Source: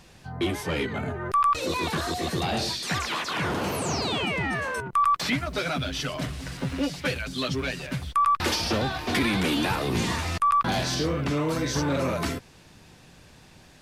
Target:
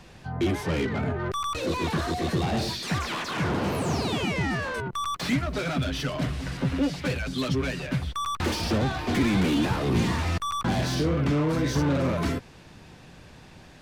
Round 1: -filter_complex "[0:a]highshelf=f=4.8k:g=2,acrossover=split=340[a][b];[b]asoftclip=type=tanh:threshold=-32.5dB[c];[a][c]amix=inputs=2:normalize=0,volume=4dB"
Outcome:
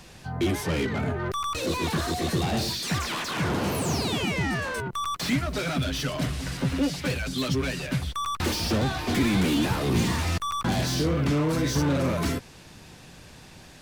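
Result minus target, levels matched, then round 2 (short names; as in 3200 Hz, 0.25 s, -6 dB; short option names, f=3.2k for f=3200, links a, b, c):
8000 Hz band +4.5 dB
-filter_complex "[0:a]highshelf=f=4.8k:g=-9,acrossover=split=340[a][b];[b]asoftclip=type=tanh:threshold=-32.5dB[c];[a][c]amix=inputs=2:normalize=0,volume=4dB"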